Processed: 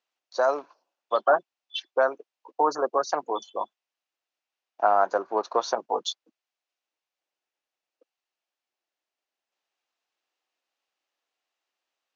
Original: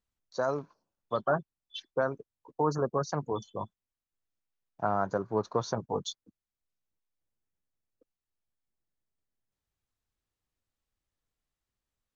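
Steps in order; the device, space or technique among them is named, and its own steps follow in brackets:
phone speaker on a table (loudspeaker in its box 370–6,400 Hz, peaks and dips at 430 Hz −5 dB, 740 Hz +4 dB, 2,700 Hz +5 dB)
level +7 dB

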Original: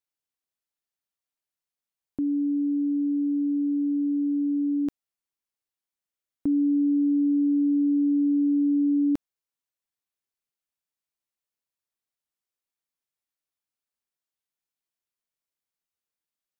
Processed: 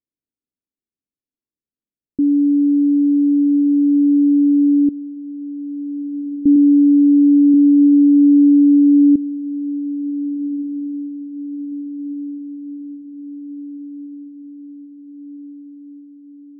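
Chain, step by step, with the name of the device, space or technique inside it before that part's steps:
0:06.55–0:07.54: comb filter 5.9 ms
under water (low-pass filter 450 Hz 24 dB per octave; parametric band 260 Hz +8 dB 0.77 octaves)
feedback delay with all-pass diffusion 1,474 ms, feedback 59%, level −15 dB
level +4 dB

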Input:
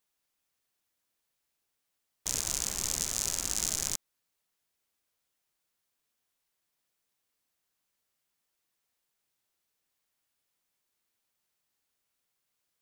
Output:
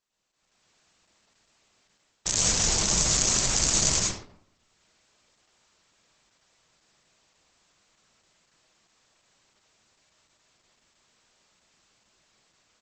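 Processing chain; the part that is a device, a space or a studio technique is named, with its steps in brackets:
speakerphone in a meeting room (convolution reverb RT60 0.65 s, pre-delay 101 ms, DRR −4 dB; far-end echo of a speakerphone 90 ms, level −13 dB; automatic gain control gain up to 15.5 dB; Opus 12 kbit/s 48,000 Hz)

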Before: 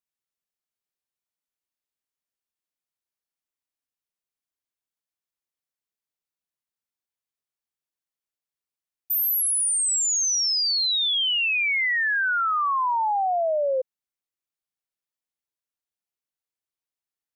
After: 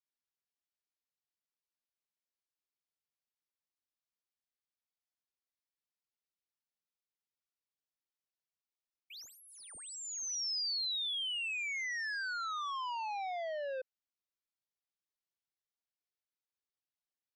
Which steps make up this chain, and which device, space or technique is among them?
overdriven synthesiser ladder filter (soft clipping −29 dBFS, distortion −12 dB; transistor ladder low-pass 6,600 Hz, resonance 30%)
level −1.5 dB

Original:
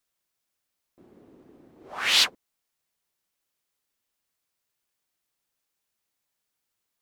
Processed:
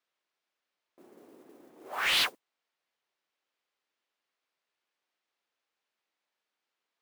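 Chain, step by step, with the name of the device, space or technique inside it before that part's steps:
carbon microphone (band-pass filter 330–3,600 Hz; soft clipping −23.5 dBFS, distortion −10 dB; noise that follows the level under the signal 17 dB)
level +1.5 dB

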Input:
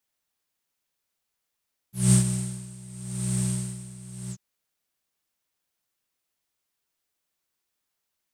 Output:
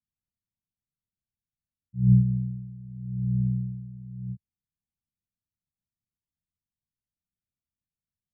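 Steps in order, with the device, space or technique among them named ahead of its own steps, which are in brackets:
the neighbour's flat through the wall (low-pass filter 210 Hz 24 dB per octave; parametric band 89 Hz +3.5 dB)
level +1.5 dB

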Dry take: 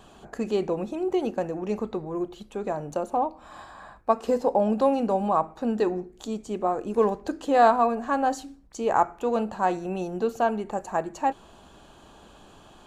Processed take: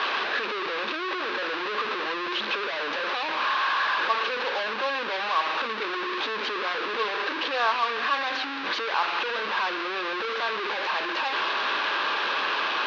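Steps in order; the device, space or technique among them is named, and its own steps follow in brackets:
digital answering machine (band-pass filter 370–3,100 Hz; linear delta modulator 32 kbit/s, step −17.5 dBFS; loudspeaker in its box 440–4,500 Hz, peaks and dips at 710 Hz −9 dB, 1,100 Hz +7 dB, 1,600 Hz +8 dB, 2,600 Hz +6 dB, 3,800 Hz +5 dB)
level −5.5 dB

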